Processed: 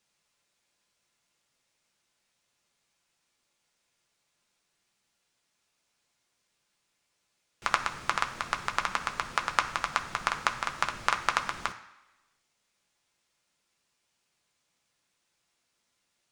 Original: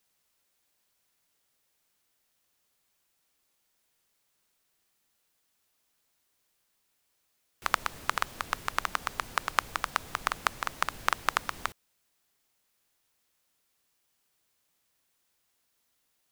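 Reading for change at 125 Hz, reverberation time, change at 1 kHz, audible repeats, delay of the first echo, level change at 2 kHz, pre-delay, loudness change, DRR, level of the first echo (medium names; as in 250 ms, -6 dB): +1.5 dB, 1.1 s, +1.5 dB, no echo, no echo, +1.5 dB, 3 ms, +1.5 dB, 3.0 dB, no echo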